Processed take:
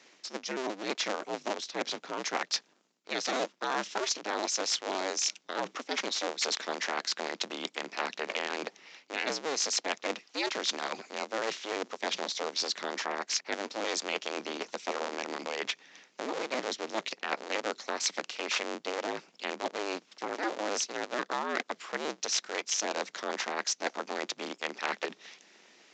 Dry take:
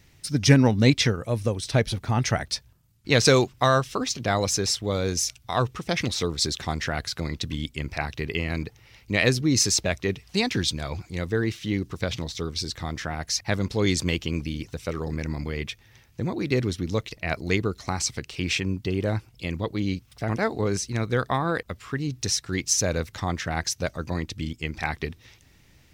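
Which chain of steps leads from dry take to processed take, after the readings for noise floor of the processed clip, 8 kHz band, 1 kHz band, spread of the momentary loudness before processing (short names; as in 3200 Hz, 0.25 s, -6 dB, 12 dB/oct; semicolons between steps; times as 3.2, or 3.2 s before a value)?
-66 dBFS, -6.0 dB, -3.5 dB, 11 LU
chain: cycle switcher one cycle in 2, inverted; reverse; compressor 16:1, threshold -29 dBFS, peak gain reduction 19.5 dB; reverse; Bessel high-pass 390 Hz, order 8; downsampling 16000 Hz; gain +3 dB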